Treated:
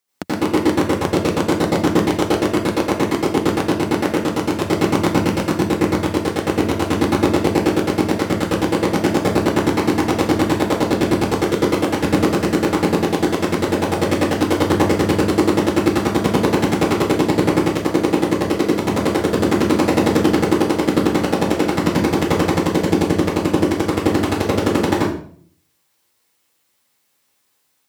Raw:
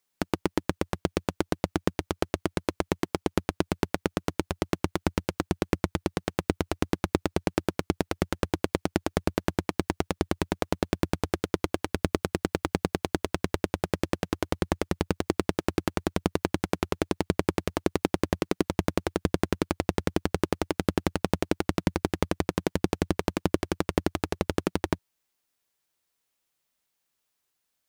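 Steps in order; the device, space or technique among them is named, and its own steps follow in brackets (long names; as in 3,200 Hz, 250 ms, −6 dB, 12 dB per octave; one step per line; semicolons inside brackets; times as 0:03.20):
far laptop microphone (convolution reverb RT60 0.55 s, pre-delay 79 ms, DRR −8 dB; high-pass filter 100 Hz 12 dB per octave; automatic gain control gain up to 6 dB)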